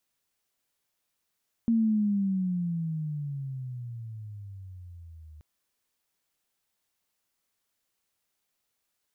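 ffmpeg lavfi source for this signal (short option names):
-f lavfi -i "aevalsrc='pow(10,(-20-25.5*t/3.73)/20)*sin(2*PI*232*3.73/(-19.5*log(2)/12)*(exp(-19.5*log(2)/12*t/3.73)-1))':d=3.73:s=44100"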